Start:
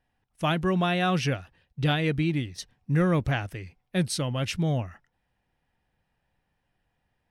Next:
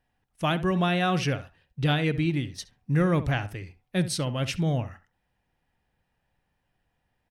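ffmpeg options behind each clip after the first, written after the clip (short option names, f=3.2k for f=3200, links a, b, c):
-filter_complex "[0:a]asplit=2[a][b];[b]adelay=68,lowpass=f=1.9k:p=1,volume=-13dB,asplit=2[c][d];[d]adelay=68,lowpass=f=1.9k:p=1,volume=0.16[e];[a][c][e]amix=inputs=3:normalize=0"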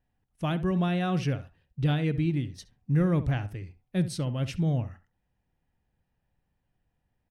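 -af "lowshelf=f=440:g=9.5,volume=-8.5dB"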